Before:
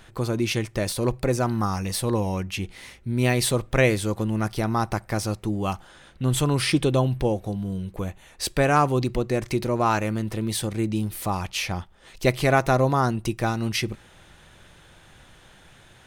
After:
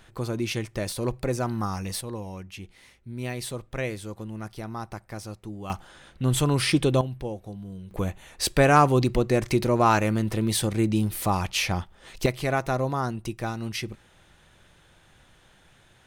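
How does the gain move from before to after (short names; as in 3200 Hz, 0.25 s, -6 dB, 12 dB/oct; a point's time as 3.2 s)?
-4 dB
from 2.01 s -11 dB
from 5.7 s -0.5 dB
from 7.01 s -9.5 dB
from 7.91 s +2 dB
from 12.26 s -6 dB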